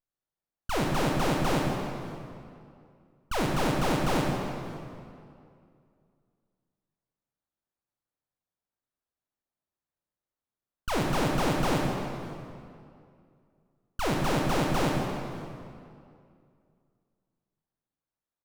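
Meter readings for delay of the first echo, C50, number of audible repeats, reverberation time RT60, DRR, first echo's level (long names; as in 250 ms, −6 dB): 568 ms, 0.5 dB, 1, 2.4 s, −1.0 dB, −22.5 dB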